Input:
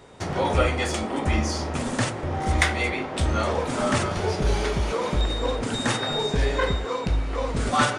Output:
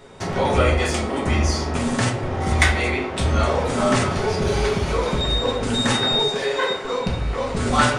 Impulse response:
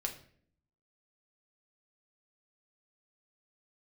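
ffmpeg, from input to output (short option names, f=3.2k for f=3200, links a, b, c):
-filter_complex "[0:a]asettb=1/sr,asplit=3[a][b][c];[a]atrim=end=6.194[d];[b]atrim=start=6.19:end=6.85,asetpts=PTS-STARTPTS,afade=t=in:d=0.004:c=qsin,afade=t=out:st=0.656:d=0.004:c=qsin,highpass=380[e];[c]atrim=start=6.846[f];[d][e]acrossfade=d=0.004:c1=hsin:c2=qsin[g];[g][f]acrossfade=d=0.004:c1=qsin:c2=hsin[h];[1:a]atrim=start_sample=2205[i];[h][i]afir=irnorm=-1:irlink=0,volume=3dB"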